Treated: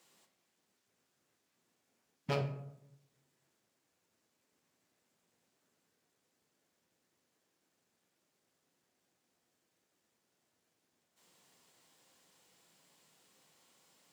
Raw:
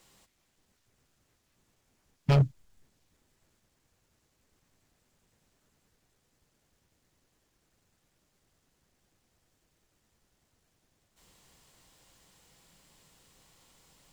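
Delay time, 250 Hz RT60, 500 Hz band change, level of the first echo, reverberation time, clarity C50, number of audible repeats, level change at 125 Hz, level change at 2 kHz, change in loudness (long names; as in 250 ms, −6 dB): no echo audible, 1.0 s, −4.5 dB, no echo audible, 0.80 s, 9.5 dB, no echo audible, −14.0 dB, −4.5 dB, −12.5 dB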